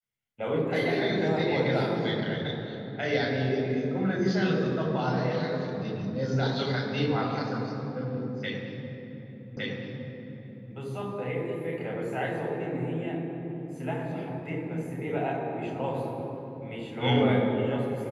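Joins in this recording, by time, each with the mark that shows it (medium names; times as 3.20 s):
9.57 s: repeat of the last 1.16 s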